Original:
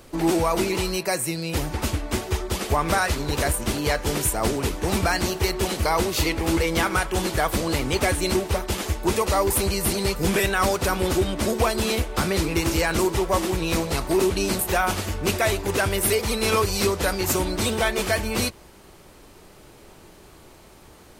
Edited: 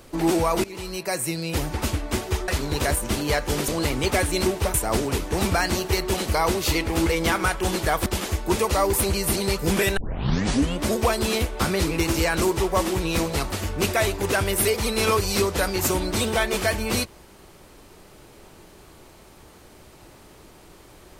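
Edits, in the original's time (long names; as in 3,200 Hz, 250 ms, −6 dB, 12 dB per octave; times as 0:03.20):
0:00.64–0:01.28: fade in, from −18 dB
0:02.48–0:03.05: remove
0:07.57–0:08.63: move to 0:04.25
0:10.54: tape start 0.84 s
0:14.09–0:14.97: remove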